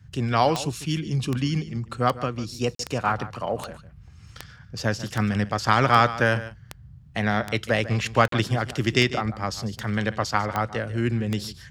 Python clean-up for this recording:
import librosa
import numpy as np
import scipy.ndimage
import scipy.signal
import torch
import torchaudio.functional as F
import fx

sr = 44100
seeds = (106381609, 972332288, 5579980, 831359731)

y = fx.fix_declick_ar(x, sr, threshold=10.0)
y = fx.fix_interpolate(y, sr, at_s=(2.75, 8.28), length_ms=43.0)
y = fx.noise_reduce(y, sr, print_start_s=6.64, print_end_s=7.14, reduce_db=23.0)
y = fx.fix_echo_inverse(y, sr, delay_ms=147, level_db=-15.0)